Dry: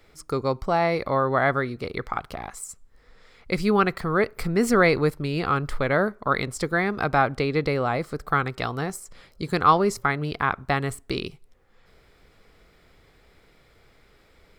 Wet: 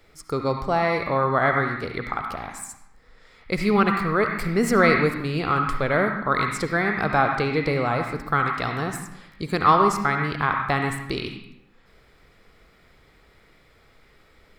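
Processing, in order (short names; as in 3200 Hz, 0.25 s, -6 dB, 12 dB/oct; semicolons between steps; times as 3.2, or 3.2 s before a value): on a send: graphic EQ 125/250/500/1000/2000/4000/8000 Hz +7/+11/-9/+11/+10/+5/-6 dB + reverb RT60 0.85 s, pre-delay 30 ms, DRR 2 dB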